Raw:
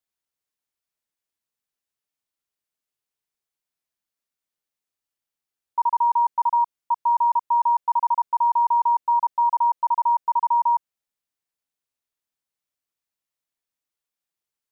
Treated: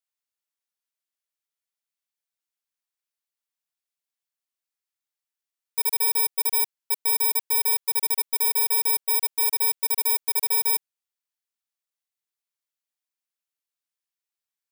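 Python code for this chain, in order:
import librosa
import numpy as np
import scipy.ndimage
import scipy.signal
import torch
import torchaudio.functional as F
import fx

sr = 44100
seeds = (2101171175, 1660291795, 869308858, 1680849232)

y = fx.bit_reversed(x, sr, seeds[0], block=32)
y = fx.highpass(y, sr, hz=1100.0, slope=6)
y = F.gain(torch.from_numpy(y), -2.5).numpy()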